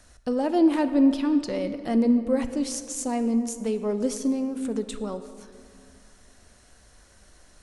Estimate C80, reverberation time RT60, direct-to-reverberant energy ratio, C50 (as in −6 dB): 12.0 dB, 2.4 s, 10.0 dB, 11.0 dB